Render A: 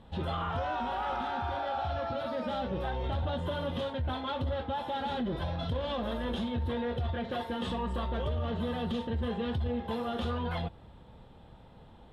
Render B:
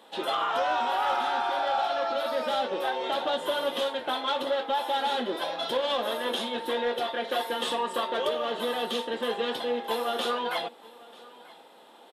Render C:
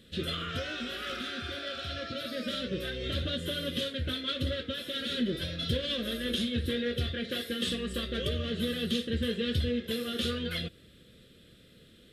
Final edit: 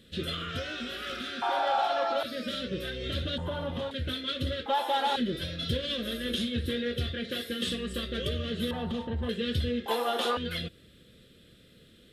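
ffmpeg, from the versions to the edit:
-filter_complex "[1:a]asplit=3[a][b][c];[0:a]asplit=2[d][e];[2:a]asplit=6[f][g][h][i][j][k];[f]atrim=end=1.422[l];[a]atrim=start=1.418:end=2.232[m];[g]atrim=start=2.228:end=3.382[n];[d]atrim=start=3.378:end=3.912[o];[h]atrim=start=3.908:end=4.662[p];[b]atrim=start=4.658:end=5.162[q];[i]atrim=start=5.158:end=8.712[r];[e]atrim=start=8.708:end=9.292[s];[j]atrim=start=9.288:end=9.862[t];[c]atrim=start=9.858:end=10.372[u];[k]atrim=start=10.368[v];[l][m]acrossfade=d=0.004:c1=hsin:c2=hsin[w];[w][n]acrossfade=d=0.004:c1=hsin:c2=hsin[x];[x][o]acrossfade=d=0.004:c1=hsin:c2=hsin[y];[y][p]acrossfade=d=0.004:c1=hsin:c2=hsin[z];[z][q]acrossfade=d=0.004:c1=hsin:c2=hsin[aa];[aa][r]acrossfade=d=0.004:c1=hsin:c2=hsin[ab];[ab][s]acrossfade=d=0.004:c1=hsin:c2=hsin[ac];[ac][t]acrossfade=d=0.004:c1=hsin:c2=hsin[ad];[ad][u]acrossfade=d=0.004:c1=hsin:c2=hsin[ae];[ae][v]acrossfade=d=0.004:c1=hsin:c2=hsin"

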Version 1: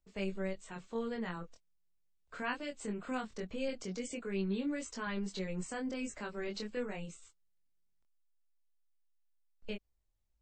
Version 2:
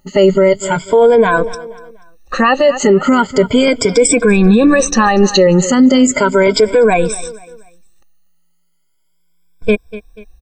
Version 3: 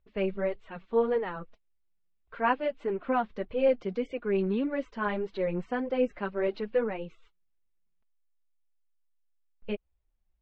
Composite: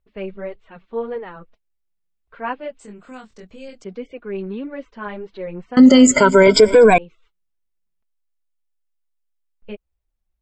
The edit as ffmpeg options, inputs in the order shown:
-filter_complex "[2:a]asplit=3[a][b][c];[a]atrim=end=2.792[d];[0:a]atrim=start=2.788:end=3.842[e];[b]atrim=start=3.838:end=5.772[f];[1:a]atrim=start=5.768:end=6.982[g];[c]atrim=start=6.978[h];[d][e]acrossfade=d=0.004:c1=hsin:c2=hsin[i];[i][f]acrossfade=d=0.004:c1=hsin:c2=hsin[j];[j][g]acrossfade=d=0.004:c1=hsin:c2=hsin[k];[k][h]acrossfade=d=0.004:c1=hsin:c2=hsin"

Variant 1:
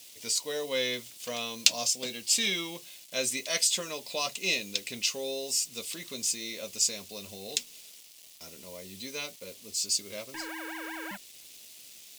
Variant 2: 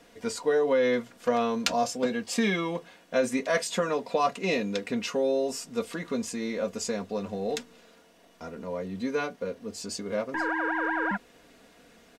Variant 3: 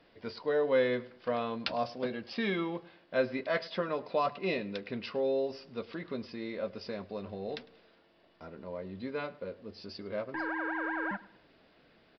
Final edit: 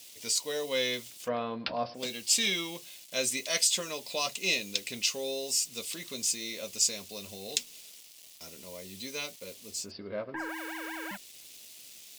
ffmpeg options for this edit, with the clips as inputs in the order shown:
-filter_complex "[2:a]asplit=2[a][b];[0:a]asplit=3[c][d][e];[c]atrim=end=1.3,asetpts=PTS-STARTPTS[f];[a]atrim=start=1.2:end=2.04,asetpts=PTS-STARTPTS[g];[d]atrim=start=1.94:end=9.92,asetpts=PTS-STARTPTS[h];[b]atrim=start=9.68:end=10.59,asetpts=PTS-STARTPTS[i];[e]atrim=start=10.35,asetpts=PTS-STARTPTS[j];[f][g]acrossfade=d=0.1:c1=tri:c2=tri[k];[k][h]acrossfade=d=0.1:c1=tri:c2=tri[l];[l][i]acrossfade=d=0.24:c1=tri:c2=tri[m];[m][j]acrossfade=d=0.24:c1=tri:c2=tri"

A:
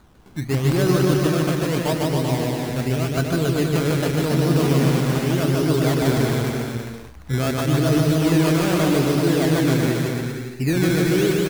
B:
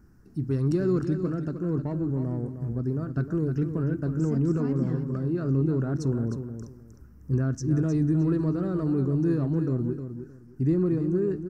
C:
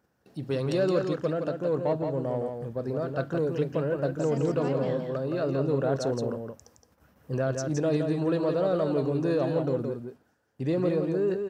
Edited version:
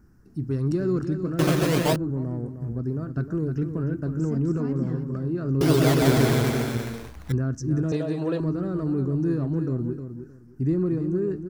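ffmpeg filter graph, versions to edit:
-filter_complex "[0:a]asplit=2[a][b];[1:a]asplit=4[c][d][e][f];[c]atrim=end=1.392[g];[a]atrim=start=1.388:end=1.962[h];[d]atrim=start=1.958:end=5.612[i];[b]atrim=start=5.608:end=7.322[j];[e]atrim=start=7.318:end=7.922[k];[2:a]atrim=start=7.918:end=8.402[l];[f]atrim=start=8.398[m];[g][h]acrossfade=d=0.004:c1=hsin:c2=hsin[n];[n][i]acrossfade=d=0.004:c1=hsin:c2=hsin[o];[o][j]acrossfade=d=0.004:c1=hsin:c2=hsin[p];[p][k]acrossfade=d=0.004:c1=hsin:c2=hsin[q];[q][l]acrossfade=d=0.004:c1=hsin:c2=hsin[r];[r][m]acrossfade=d=0.004:c1=hsin:c2=hsin"

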